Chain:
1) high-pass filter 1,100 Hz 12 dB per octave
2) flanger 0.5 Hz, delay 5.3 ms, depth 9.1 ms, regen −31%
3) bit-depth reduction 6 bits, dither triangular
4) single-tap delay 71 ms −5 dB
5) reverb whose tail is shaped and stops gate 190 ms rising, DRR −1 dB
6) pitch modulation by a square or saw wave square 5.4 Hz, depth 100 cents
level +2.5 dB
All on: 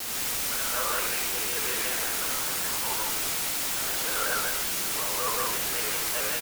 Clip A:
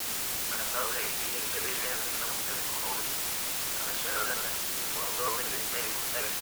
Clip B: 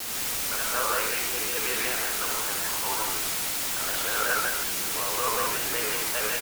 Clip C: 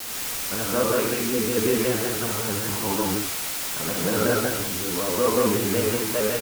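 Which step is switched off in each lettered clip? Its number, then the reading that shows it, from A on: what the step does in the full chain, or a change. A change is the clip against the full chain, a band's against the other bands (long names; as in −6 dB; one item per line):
5, change in integrated loudness −3.5 LU
2, 500 Hz band +2.0 dB
1, 250 Hz band +15.5 dB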